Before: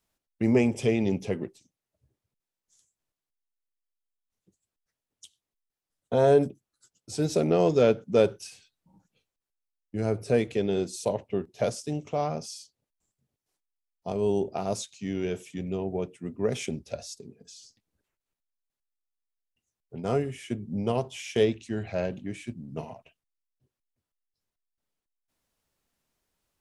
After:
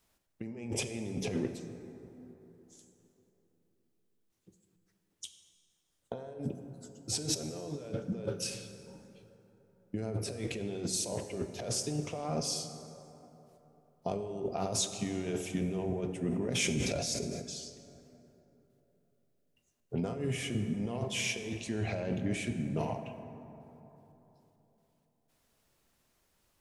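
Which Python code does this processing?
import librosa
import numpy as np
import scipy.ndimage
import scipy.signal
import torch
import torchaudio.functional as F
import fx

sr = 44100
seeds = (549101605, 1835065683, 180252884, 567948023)

y = fx.over_compress(x, sr, threshold_db=-35.0, ratio=-1.0)
y = fx.rev_plate(y, sr, seeds[0], rt60_s=3.6, hf_ratio=0.4, predelay_ms=0, drr_db=7.0)
y = fx.sustainer(y, sr, db_per_s=23.0, at=(16.2, 17.42))
y = y * 10.0 ** (-1.5 / 20.0)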